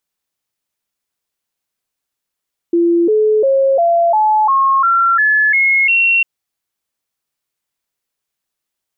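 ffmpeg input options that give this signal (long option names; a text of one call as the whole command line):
ffmpeg -f lavfi -i "aevalsrc='0.355*clip(min(mod(t,0.35),0.35-mod(t,0.35))/0.005,0,1)*sin(2*PI*341*pow(2,floor(t/0.35)/3)*mod(t,0.35))':duration=3.5:sample_rate=44100" out.wav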